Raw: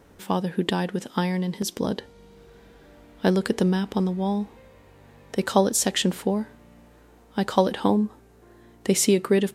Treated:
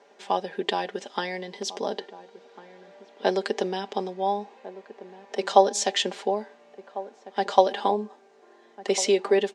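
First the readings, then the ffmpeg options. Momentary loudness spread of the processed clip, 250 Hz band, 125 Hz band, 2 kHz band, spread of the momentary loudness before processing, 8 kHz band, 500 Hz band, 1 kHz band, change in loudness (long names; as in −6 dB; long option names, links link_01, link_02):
19 LU, −10.5 dB, below −15 dB, −0.5 dB, 10 LU, −5.0 dB, +1.0 dB, +4.5 dB, −1.5 dB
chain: -filter_complex "[0:a]highpass=frequency=330:width=0.5412,highpass=frequency=330:width=1.3066,equalizer=frequency=350:width_type=q:width=4:gain=-4,equalizer=frequency=740:width_type=q:width=4:gain=6,equalizer=frequency=1300:width_type=q:width=4:gain=-5,lowpass=frequency=6600:width=0.5412,lowpass=frequency=6600:width=1.3066,aecho=1:1:5:0.65,asplit=2[link_01][link_02];[link_02]adelay=1399,volume=-16dB,highshelf=frequency=4000:gain=-31.5[link_03];[link_01][link_03]amix=inputs=2:normalize=0,volume=-1dB"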